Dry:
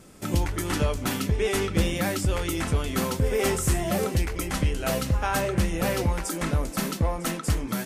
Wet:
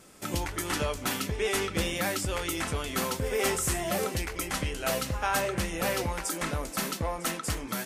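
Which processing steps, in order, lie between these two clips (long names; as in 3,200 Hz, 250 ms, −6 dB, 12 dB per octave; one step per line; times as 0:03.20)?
low-shelf EQ 350 Hz −10 dB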